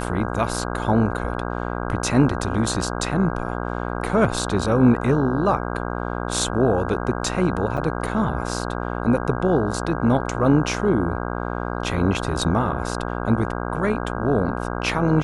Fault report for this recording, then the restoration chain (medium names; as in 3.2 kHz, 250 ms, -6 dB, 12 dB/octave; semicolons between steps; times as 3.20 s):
buzz 60 Hz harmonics 27 -27 dBFS
7.77–7.78 s: dropout 5.7 ms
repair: de-hum 60 Hz, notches 27; interpolate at 7.77 s, 5.7 ms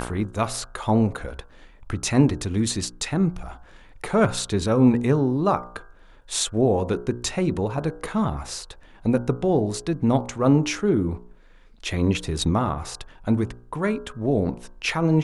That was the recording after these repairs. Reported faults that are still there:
nothing left